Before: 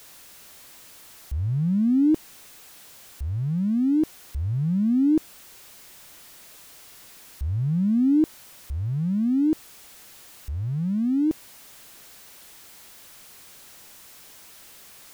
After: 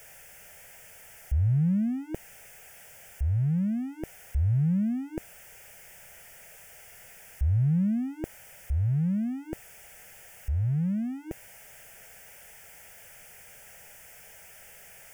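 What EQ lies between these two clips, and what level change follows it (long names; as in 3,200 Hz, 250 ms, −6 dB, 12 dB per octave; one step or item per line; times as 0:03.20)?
high-shelf EQ 7,800 Hz −6.5 dB
phaser with its sweep stopped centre 1,100 Hz, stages 6
+3.5 dB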